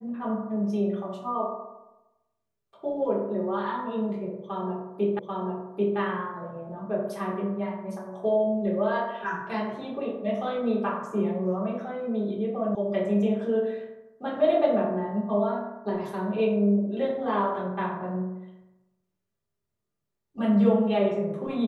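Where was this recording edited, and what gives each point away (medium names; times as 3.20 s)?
5.19 s: repeat of the last 0.79 s
12.75 s: sound stops dead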